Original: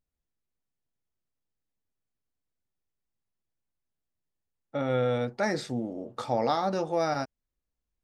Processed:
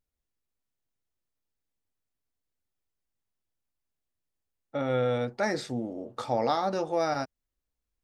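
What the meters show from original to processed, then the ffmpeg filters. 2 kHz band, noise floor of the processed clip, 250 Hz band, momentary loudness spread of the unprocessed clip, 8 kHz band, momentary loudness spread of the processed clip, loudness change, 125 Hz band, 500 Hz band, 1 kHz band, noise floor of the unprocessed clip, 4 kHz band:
0.0 dB, under -85 dBFS, -1.0 dB, 10 LU, 0.0 dB, 10 LU, -0.5 dB, -1.5 dB, 0.0 dB, 0.0 dB, under -85 dBFS, 0.0 dB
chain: -af "equalizer=f=170:w=2.9:g=-4.5"

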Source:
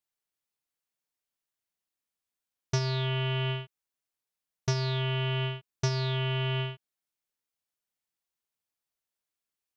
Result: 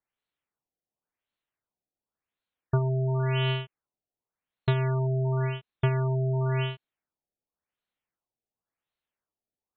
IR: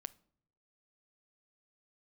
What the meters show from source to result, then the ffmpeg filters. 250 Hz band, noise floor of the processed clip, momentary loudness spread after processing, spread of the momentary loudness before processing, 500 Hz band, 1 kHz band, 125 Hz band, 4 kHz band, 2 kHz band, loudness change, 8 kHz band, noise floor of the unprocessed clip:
+4.0 dB, under -85 dBFS, 7 LU, 8 LU, +4.0 dB, +2.5 dB, +4.0 dB, -5.5 dB, -1.0 dB, +3.0 dB, no reading, under -85 dBFS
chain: -af "afftfilt=real='re*lt(b*sr/1024,800*pow(4500/800,0.5+0.5*sin(2*PI*0.92*pts/sr)))':imag='im*lt(b*sr/1024,800*pow(4500/800,0.5+0.5*sin(2*PI*0.92*pts/sr)))':win_size=1024:overlap=0.75,volume=1.58"

